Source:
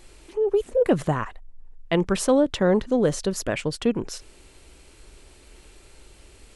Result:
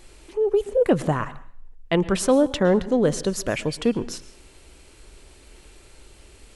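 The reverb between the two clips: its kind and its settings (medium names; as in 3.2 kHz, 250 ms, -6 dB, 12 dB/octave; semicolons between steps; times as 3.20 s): plate-style reverb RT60 0.51 s, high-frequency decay 0.95×, pre-delay 100 ms, DRR 17 dB; trim +1 dB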